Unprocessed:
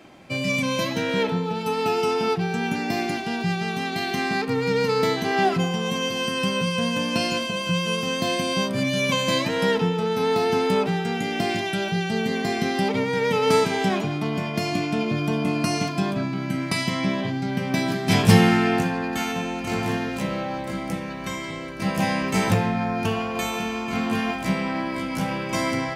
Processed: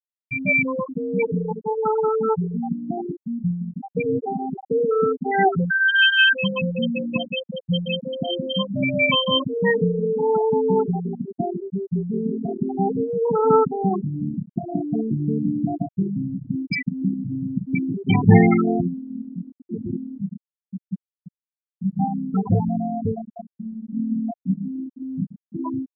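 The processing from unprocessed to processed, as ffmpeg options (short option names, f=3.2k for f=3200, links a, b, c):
-filter_complex "[0:a]asettb=1/sr,asplit=3[a][b][c];[a]atrim=end=5.704[d];[b]atrim=start=5.7:end=6.33,asetpts=PTS-STARTPTS,afade=t=in:d=0.004:c=qsin,afade=t=out:st=0.626:d=0.004:c=qsin,highpass=f=1.6k:t=q:w=8.1[e];[c]atrim=start=6.326[f];[d][e]acrossfade=d=0.004:c1=hsin:c2=qsin[g];[g][f]acrossfade=d=0.004:c1=qsin:c2=hsin,asplit=3[h][i][j];[h]atrim=end=3.972[k];[i]atrim=start=3.968:end=4.712,asetpts=PTS-STARTPTS,areverse[l];[j]atrim=start=4.708[m];[k][l]acrossfade=d=0.004:c1=hsin:c2=hsin[n];[n][m]acrossfade=d=0.004:c1=hsin:c2=hsin,afftfilt=real='re*gte(hypot(re,im),0.316)':imag='im*gte(hypot(re,im),0.316)':win_size=1024:overlap=0.75,highshelf=f=2k:g=9.5,volume=3dB"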